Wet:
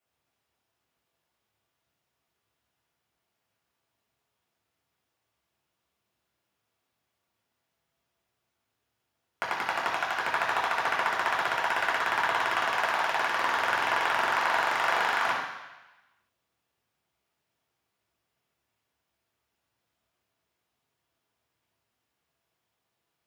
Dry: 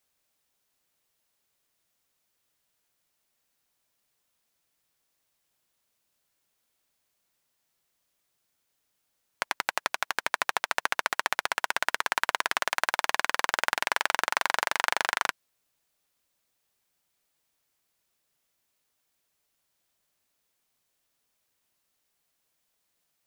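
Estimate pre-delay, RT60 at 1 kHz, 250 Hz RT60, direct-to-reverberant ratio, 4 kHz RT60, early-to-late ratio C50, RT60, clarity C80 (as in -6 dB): 3 ms, 1.1 s, 0.95 s, -6.0 dB, 1.2 s, 2.0 dB, 1.1 s, 4.5 dB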